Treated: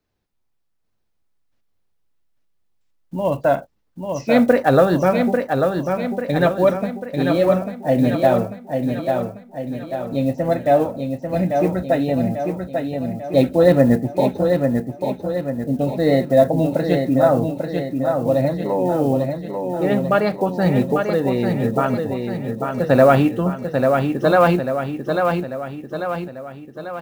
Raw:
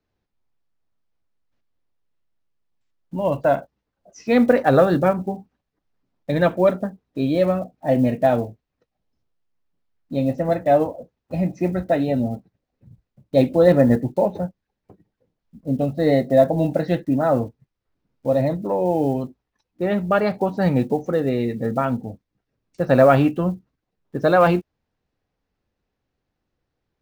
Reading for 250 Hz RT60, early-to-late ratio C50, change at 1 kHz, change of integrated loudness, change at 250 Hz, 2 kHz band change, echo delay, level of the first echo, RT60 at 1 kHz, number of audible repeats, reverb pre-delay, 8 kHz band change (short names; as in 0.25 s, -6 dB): none, none, +2.5 dB, +1.0 dB, +2.5 dB, +3.0 dB, 0.843 s, -5.0 dB, none, 6, none, n/a